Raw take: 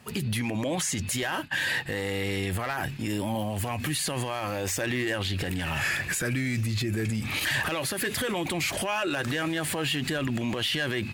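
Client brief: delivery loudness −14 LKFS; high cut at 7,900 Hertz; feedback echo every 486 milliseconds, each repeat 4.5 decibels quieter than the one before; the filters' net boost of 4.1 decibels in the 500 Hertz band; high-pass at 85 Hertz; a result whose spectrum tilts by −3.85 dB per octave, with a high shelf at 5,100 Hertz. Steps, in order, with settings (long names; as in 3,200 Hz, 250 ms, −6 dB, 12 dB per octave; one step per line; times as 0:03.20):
high-pass filter 85 Hz
low-pass filter 7,900 Hz
parametric band 500 Hz +5 dB
high-shelf EQ 5,100 Hz +3.5 dB
repeating echo 486 ms, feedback 60%, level −4.5 dB
level +11.5 dB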